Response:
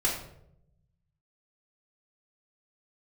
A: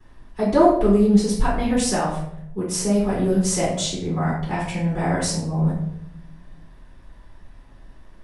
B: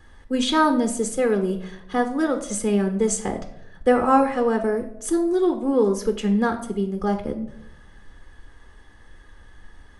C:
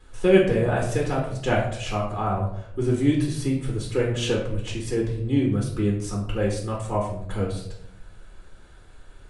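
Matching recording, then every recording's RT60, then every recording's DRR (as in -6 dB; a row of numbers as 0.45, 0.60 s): C; 0.75, 0.75, 0.75 s; -10.0, 5.5, -3.0 dB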